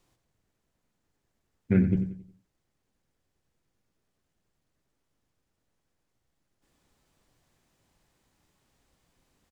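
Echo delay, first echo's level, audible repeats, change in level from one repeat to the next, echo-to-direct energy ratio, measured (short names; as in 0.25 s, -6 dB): 91 ms, -12.0 dB, 4, -7.5 dB, -11.0 dB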